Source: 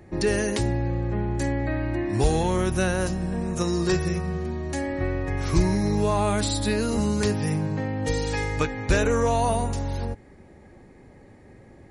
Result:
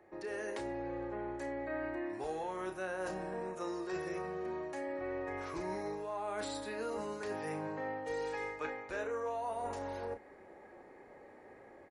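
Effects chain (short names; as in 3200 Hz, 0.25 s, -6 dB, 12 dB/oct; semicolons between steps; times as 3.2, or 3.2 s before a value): AGC gain up to 7 dB; three-band isolator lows -23 dB, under 370 Hz, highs -13 dB, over 2100 Hz; reverse; compressor 6:1, threshold -31 dBFS, peak gain reduction 14.5 dB; reverse; doubler 32 ms -8 dB; gain -6.5 dB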